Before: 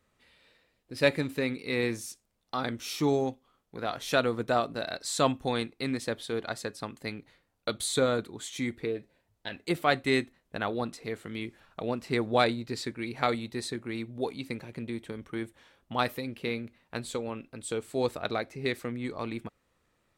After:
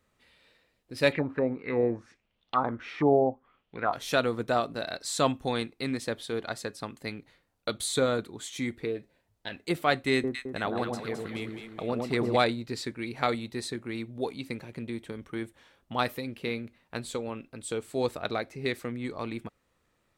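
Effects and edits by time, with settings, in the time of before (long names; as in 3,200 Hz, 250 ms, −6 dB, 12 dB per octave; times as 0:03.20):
0:01.12–0:03.93: envelope-controlled low-pass 660–3,500 Hz down, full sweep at −25 dBFS
0:10.13–0:12.37: delay that swaps between a low-pass and a high-pass 107 ms, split 1,100 Hz, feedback 67%, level −3 dB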